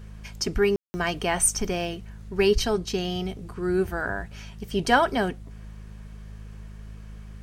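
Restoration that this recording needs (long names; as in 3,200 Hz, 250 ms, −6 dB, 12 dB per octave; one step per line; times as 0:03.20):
clipped peaks rebuilt −8.5 dBFS
hum removal 52.4 Hz, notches 4
ambience match 0:00.76–0:00.94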